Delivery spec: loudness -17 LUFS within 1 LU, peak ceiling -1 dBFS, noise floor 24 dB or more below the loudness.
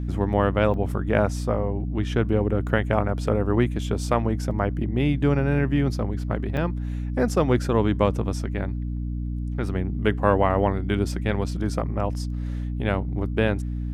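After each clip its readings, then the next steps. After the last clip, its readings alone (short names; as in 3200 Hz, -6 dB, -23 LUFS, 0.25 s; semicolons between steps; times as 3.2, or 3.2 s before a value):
dropouts 3; longest dropout 2.3 ms; hum 60 Hz; harmonics up to 300 Hz; hum level -26 dBFS; loudness -24.5 LUFS; peak -3.5 dBFS; loudness target -17.0 LUFS
-> interpolate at 0.74/4.51/6.57, 2.3 ms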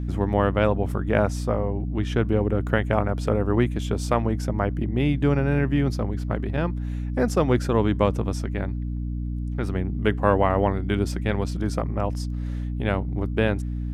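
dropouts 0; hum 60 Hz; harmonics up to 300 Hz; hum level -26 dBFS
-> notches 60/120/180/240/300 Hz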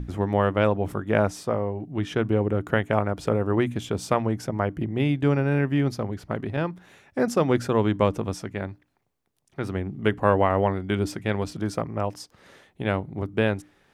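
hum none; loudness -25.5 LUFS; peak -4.5 dBFS; loudness target -17.0 LUFS
-> gain +8.5 dB; limiter -1 dBFS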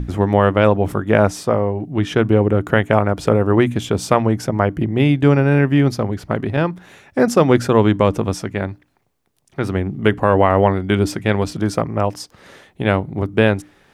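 loudness -17.5 LUFS; peak -1.0 dBFS; noise floor -59 dBFS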